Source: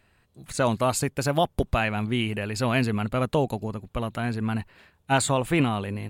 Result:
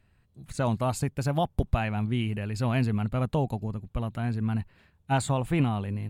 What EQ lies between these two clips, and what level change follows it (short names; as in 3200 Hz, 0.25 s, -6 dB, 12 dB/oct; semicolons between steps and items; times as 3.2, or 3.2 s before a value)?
dynamic EQ 800 Hz, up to +5 dB, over -37 dBFS, Q 2.3; tone controls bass +10 dB, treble -1 dB; -8.0 dB